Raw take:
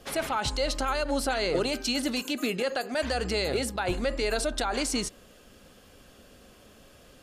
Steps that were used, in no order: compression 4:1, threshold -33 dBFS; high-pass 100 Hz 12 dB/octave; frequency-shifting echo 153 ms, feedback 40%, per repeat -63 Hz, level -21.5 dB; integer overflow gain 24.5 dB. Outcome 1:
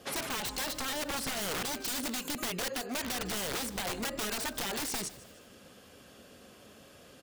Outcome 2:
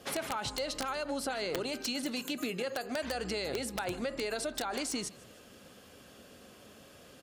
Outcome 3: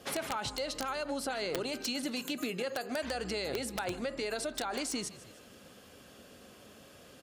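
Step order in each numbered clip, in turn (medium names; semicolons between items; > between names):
high-pass > integer overflow > frequency-shifting echo > compression; high-pass > compression > frequency-shifting echo > integer overflow; frequency-shifting echo > compression > high-pass > integer overflow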